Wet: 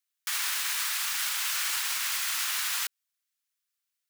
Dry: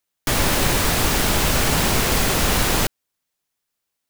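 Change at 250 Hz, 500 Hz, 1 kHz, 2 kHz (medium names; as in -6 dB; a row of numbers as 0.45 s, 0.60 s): under -40 dB, -36.0 dB, -15.5 dB, -8.5 dB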